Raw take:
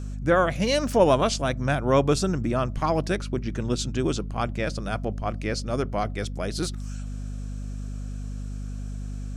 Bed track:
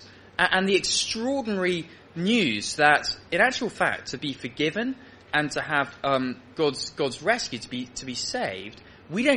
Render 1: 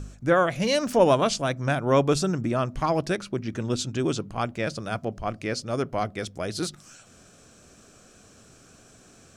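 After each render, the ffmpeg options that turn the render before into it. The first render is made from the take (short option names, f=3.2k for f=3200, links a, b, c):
-af "bandreject=f=50:t=h:w=4,bandreject=f=100:t=h:w=4,bandreject=f=150:t=h:w=4,bandreject=f=200:t=h:w=4,bandreject=f=250:t=h:w=4"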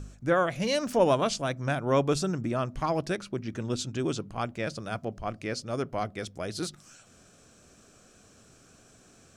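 -af "volume=-4dB"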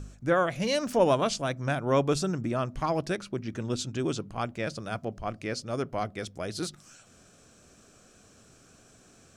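-af anull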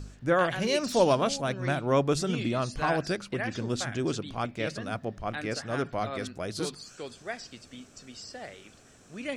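-filter_complex "[1:a]volume=-14dB[a];[0:a][a]amix=inputs=2:normalize=0"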